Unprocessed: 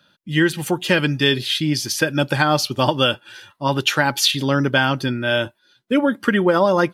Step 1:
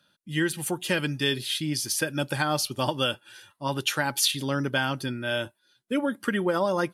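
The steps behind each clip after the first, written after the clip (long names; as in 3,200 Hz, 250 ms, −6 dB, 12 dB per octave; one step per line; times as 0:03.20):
parametric band 10,000 Hz +11.5 dB 0.9 octaves
level −9 dB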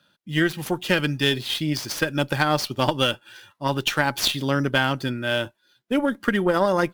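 running median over 5 samples
harmonic generator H 2 −11 dB, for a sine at −10.5 dBFS
level +4 dB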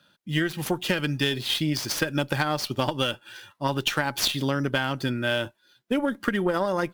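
downward compressor, threshold −22 dBFS, peak gain reduction 8 dB
level +1.5 dB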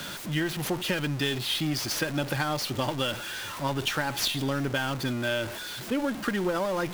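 converter with a step at zero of −26 dBFS
level −5.5 dB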